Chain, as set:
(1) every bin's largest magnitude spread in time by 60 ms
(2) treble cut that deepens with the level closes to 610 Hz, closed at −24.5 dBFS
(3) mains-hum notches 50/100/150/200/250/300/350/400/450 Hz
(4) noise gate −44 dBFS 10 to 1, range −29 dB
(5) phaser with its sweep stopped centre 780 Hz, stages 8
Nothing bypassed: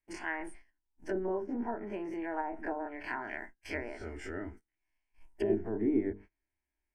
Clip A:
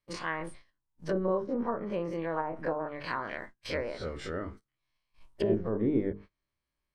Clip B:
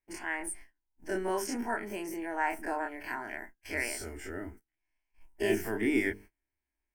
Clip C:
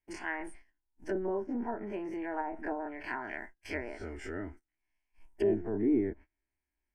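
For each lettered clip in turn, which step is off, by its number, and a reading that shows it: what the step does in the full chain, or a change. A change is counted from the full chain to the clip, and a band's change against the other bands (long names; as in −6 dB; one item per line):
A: 5, 4 kHz band +6.5 dB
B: 2, 8 kHz band +15.5 dB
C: 3, change in integrated loudness +1.0 LU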